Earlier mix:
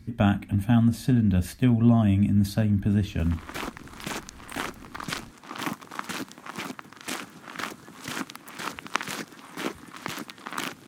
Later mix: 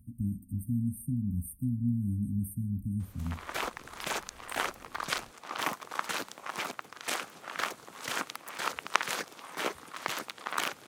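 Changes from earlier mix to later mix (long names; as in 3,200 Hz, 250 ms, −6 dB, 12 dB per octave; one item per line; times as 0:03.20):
speech: add linear-phase brick-wall band-stop 290–8,400 Hz
first sound: muted
master: add low shelf with overshoot 370 Hz −9 dB, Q 1.5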